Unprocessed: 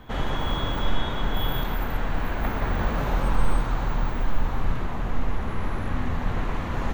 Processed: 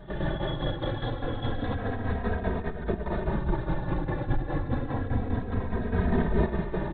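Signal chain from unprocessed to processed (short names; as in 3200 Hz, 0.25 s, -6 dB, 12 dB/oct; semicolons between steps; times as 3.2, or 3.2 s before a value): 0.42–1.44 HPF 75 Hz; limiter -17 dBFS, peak gain reduction 8 dB; 2.58–3.13 negative-ratio compressor -28 dBFS, ratio -0.5; tremolo saw down 4.9 Hz, depth 70%; 5.88–6.46 flutter echo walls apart 5.8 m, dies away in 0.7 s; reverb RT60 0.20 s, pre-delay 3 ms, DRR 15.5 dB; LPC vocoder at 8 kHz whisper; endless flanger 2.9 ms -0.29 Hz; gain -3.5 dB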